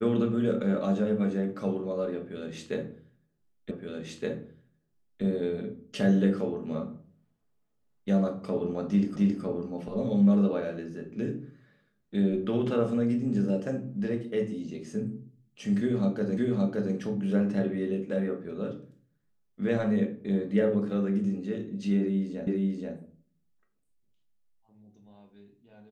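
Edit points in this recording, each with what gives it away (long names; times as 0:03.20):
0:03.71: the same again, the last 1.52 s
0:09.16: the same again, the last 0.27 s
0:16.37: the same again, the last 0.57 s
0:22.47: the same again, the last 0.48 s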